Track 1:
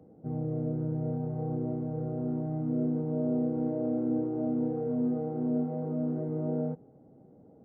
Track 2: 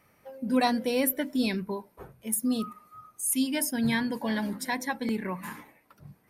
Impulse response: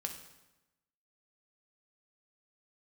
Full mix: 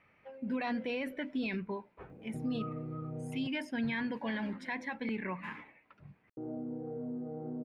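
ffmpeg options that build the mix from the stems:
-filter_complex "[0:a]acompressor=threshold=0.00794:ratio=4,adelay=2100,volume=1.26,asplit=3[s0][s1][s2];[s0]atrim=end=3.48,asetpts=PTS-STARTPTS,afade=t=out:st=3.476:d=0.004:c=hsin[s3];[s1]atrim=start=3.48:end=6.37,asetpts=PTS-STARTPTS,volume=0[s4];[s2]atrim=start=6.37,asetpts=PTS-STARTPTS,afade=t=in:d=0.004:c=hsin[s5];[s3][s4][s5]concat=n=3:v=0:a=1[s6];[1:a]lowpass=f=2500:t=q:w=2.3,volume=0.531[s7];[s6][s7]amix=inputs=2:normalize=0,alimiter=level_in=1.5:limit=0.0631:level=0:latency=1:release=27,volume=0.668"

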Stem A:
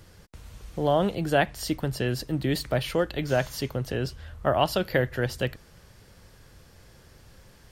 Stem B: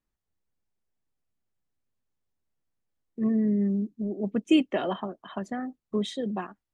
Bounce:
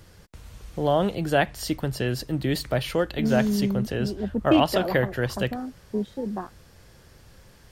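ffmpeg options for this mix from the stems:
-filter_complex "[0:a]volume=1.12[s0];[1:a]afwtdn=0.0158,volume=1.06[s1];[s0][s1]amix=inputs=2:normalize=0"

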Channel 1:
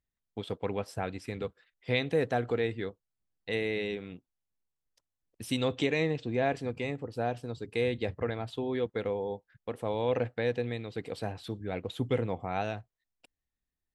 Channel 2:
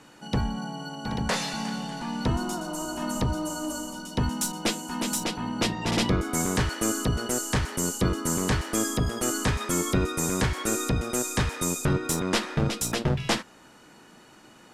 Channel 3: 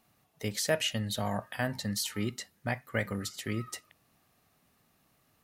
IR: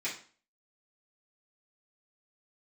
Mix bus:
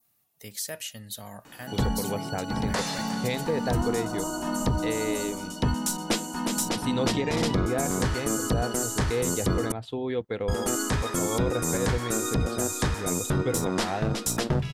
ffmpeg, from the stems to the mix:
-filter_complex "[0:a]adelay=1350,volume=1.26[s0];[1:a]adelay=1450,volume=1.19,asplit=3[s1][s2][s3];[s1]atrim=end=9.72,asetpts=PTS-STARTPTS,afade=t=out:st=9.716:d=0.004:c=hsin[s4];[s2]atrim=start=9.72:end=10.48,asetpts=PTS-STARTPTS,volume=0[s5];[s3]atrim=start=10.48,asetpts=PTS-STARTPTS,afade=t=in:d=0.004:c=hsin[s6];[s4][s5][s6]concat=n=3:v=0:a=1[s7];[2:a]aemphasis=mode=production:type=75kf,volume=0.299[s8];[s0][s7][s8]amix=inputs=3:normalize=0,adynamicequalizer=threshold=0.00562:dfrequency=2600:dqfactor=1.5:tfrequency=2600:tqfactor=1.5:attack=5:release=100:ratio=0.375:range=2.5:mode=cutabove:tftype=bell,alimiter=limit=0.158:level=0:latency=1:release=104"

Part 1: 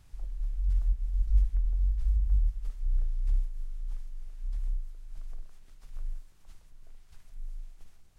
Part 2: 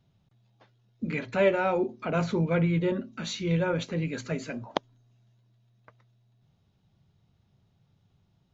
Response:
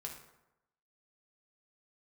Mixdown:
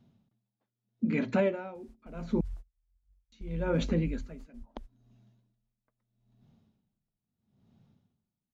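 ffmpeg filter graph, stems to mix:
-filter_complex "[0:a]highpass=54,adelay=1750,volume=0.422[s0];[1:a]equalizer=f=230:w=2.9:g=13,aeval=exprs='val(0)*pow(10,-27*(0.5-0.5*cos(2*PI*0.77*n/s))/20)':c=same,volume=0.794,asplit=3[s1][s2][s3];[s1]atrim=end=2.41,asetpts=PTS-STARTPTS,afade=t=out:st=2.406:d=0.004:c=hsin[s4];[s2]atrim=start=2.41:end=3.32,asetpts=PTS-STARTPTS,volume=0[s5];[s3]atrim=start=3.32,asetpts=PTS-STARTPTS,afade=t=in:d=0.004:c=hsin[s6];[s4][s5][s6]concat=n=3:v=0:a=1,asplit=2[s7][s8];[s8]apad=whole_len=438339[s9];[s0][s9]sidechaingate=range=0.0224:threshold=0.00158:ratio=16:detection=peak[s10];[s10][s7]amix=inputs=2:normalize=0,equalizer=f=430:w=0.38:g=5,alimiter=limit=0.141:level=0:latency=1:release=444"

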